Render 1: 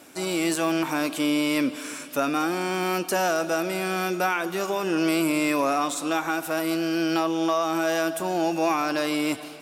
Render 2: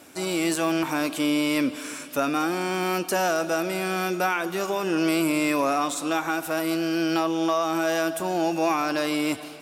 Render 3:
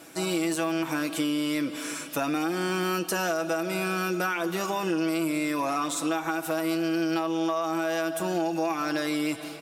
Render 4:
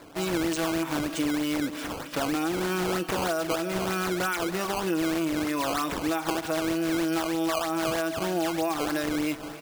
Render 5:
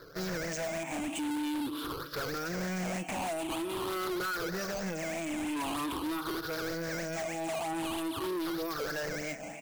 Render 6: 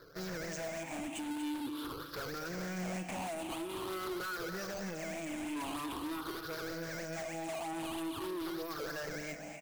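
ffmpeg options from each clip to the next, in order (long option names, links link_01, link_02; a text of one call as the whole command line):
ffmpeg -i in.wav -af "equalizer=frequency=84:width=2.3:gain=7" out.wav
ffmpeg -i in.wav -af "aecho=1:1:6.1:0.56,acompressor=threshold=-24dB:ratio=6" out.wav
ffmpeg -i in.wav -af "acrusher=samples=14:mix=1:aa=0.000001:lfo=1:lforange=22.4:lforate=3.2" out.wav
ffmpeg -i in.wav -af "afftfilt=real='re*pow(10,18/40*sin(2*PI*(0.59*log(max(b,1)*sr/1024/100)/log(2)-(0.46)*(pts-256)/sr)))':imag='im*pow(10,18/40*sin(2*PI*(0.59*log(max(b,1)*sr/1024/100)/log(2)-(0.46)*(pts-256)/sr)))':win_size=1024:overlap=0.75,asoftclip=type=hard:threshold=-25.5dB,volume=-6.5dB" out.wav
ffmpeg -i in.wav -af "aecho=1:1:239:0.335,volume=-5.5dB" out.wav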